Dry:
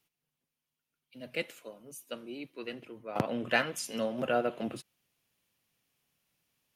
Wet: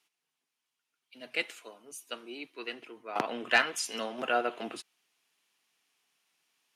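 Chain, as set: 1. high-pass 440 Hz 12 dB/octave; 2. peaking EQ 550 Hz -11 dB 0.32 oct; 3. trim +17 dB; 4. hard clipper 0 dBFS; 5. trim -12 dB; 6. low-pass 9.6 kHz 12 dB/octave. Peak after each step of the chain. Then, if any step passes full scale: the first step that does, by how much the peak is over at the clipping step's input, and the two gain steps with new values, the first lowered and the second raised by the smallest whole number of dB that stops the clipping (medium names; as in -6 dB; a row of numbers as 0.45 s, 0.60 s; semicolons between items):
-12.5 dBFS, -12.5 dBFS, +4.5 dBFS, 0.0 dBFS, -12.0 dBFS, -11.5 dBFS; step 3, 4.5 dB; step 3 +12 dB, step 5 -7 dB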